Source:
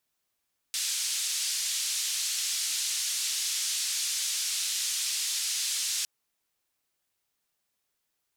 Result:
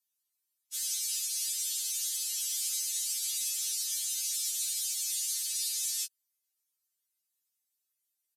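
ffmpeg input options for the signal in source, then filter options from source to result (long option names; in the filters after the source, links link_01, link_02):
-f lavfi -i "anoisesrc=color=white:duration=5.31:sample_rate=44100:seed=1,highpass=frequency=3700,lowpass=frequency=7600,volume=-18.3dB"
-af "aderivative,aresample=32000,aresample=44100,afftfilt=real='re*3.46*eq(mod(b,12),0)':imag='im*3.46*eq(mod(b,12),0)':win_size=2048:overlap=0.75"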